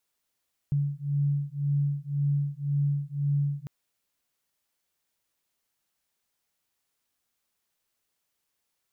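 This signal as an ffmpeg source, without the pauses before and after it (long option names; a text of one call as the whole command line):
ffmpeg -f lavfi -i "aevalsrc='0.0422*(sin(2*PI*142*t)+sin(2*PI*143.9*t))':duration=2.95:sample_rate=44100" out.wav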